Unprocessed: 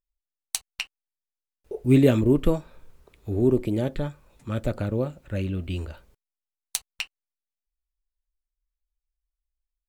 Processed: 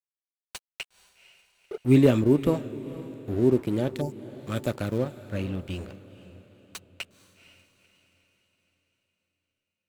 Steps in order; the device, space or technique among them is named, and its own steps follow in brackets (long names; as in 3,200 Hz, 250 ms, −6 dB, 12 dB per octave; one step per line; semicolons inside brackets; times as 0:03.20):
high-pass filter 93 Hz 12 dB per octave
early transistor amplifier (dead-zone distortion −42 dBFS; slew-rate limiting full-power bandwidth 120 Hz)
0:03.94–0:04.98: high-shelf EQ 3,600 Hz +10 dB
0:04.03–0:04.31: healed spectral selection 960–4,400 Hz after
feedback delay with all-pass diffusion 485 ms, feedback 46%, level −15.5 dB